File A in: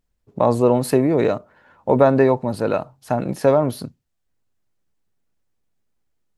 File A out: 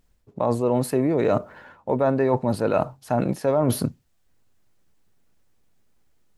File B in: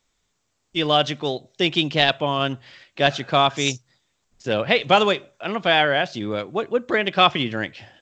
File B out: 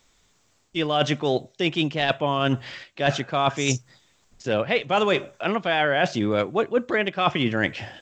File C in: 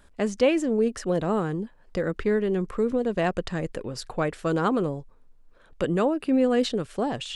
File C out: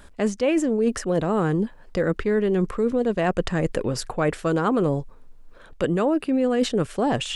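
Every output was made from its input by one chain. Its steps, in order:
reverse; compression 8:1, threshold -27 dBFS; reverse; dynamic bell 4.1 kHz, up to -7 dB, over -50 dBFS, Q 1.7; trim +9 dB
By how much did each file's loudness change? -4.5 LU, -3.0 LU, +2.5 LU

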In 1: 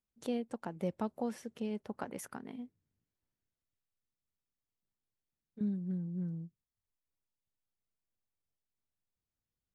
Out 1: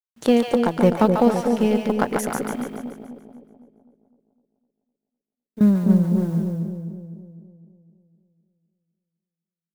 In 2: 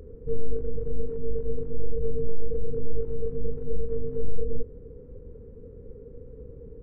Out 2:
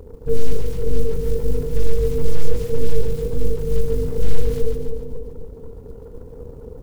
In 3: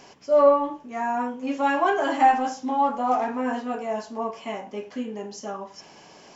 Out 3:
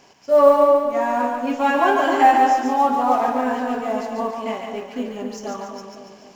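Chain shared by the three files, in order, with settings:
companding laws mixed up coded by A; two-band feedback delay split 670 Hz, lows 254 ms, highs 143 ms, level -4 dB; peak normalisation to -2 dBFS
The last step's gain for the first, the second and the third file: +20.5 dB, +8.5 dB, +4.0 dB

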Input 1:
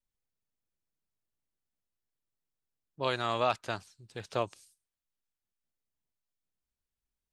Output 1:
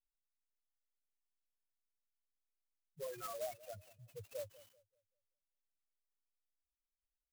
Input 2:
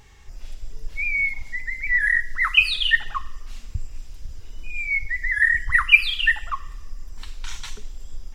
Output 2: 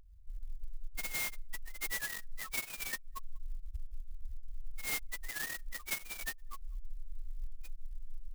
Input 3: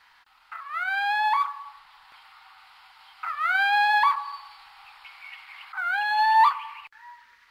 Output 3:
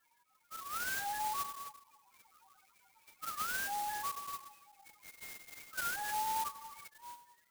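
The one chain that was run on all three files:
knee-point frequency compression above 2.1 kHz 4:1; compression 16:1, threshold -29 dBFS; loudest bins only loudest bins 2; bucket-brigade echo 192 ms, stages 1024, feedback 31%, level -19 dB; sampling jitter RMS 0.077 ms; trim -2.5 dB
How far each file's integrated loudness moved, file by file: -14.0 LU, -20.5 LU, -15.5 LU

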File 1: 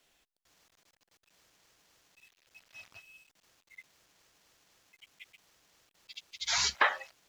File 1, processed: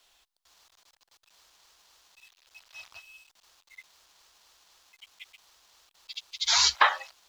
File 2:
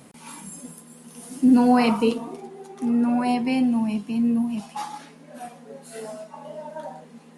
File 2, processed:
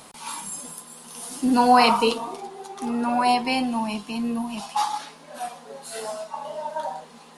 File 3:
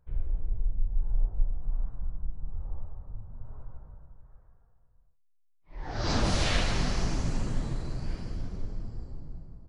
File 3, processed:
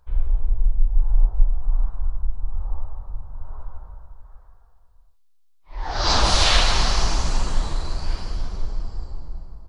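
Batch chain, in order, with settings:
graphic EQ 125/250/500/1000/2000/4000 Hz -12/-9/-4/+5/-4/+5 dB; normalise loudness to -24 LUFS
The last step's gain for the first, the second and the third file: +4.5 dB, +6.5 dB, +10.5 dB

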